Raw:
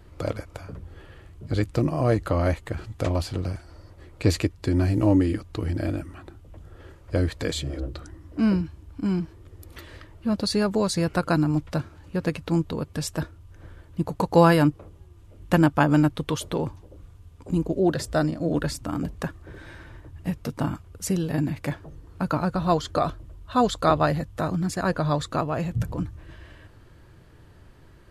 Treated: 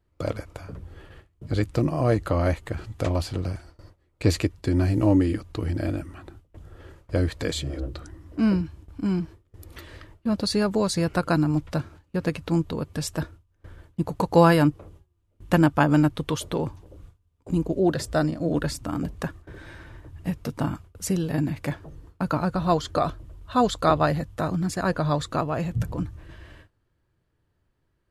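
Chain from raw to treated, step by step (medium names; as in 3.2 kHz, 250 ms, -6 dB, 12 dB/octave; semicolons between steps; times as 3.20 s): gate with hold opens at -36 dBFS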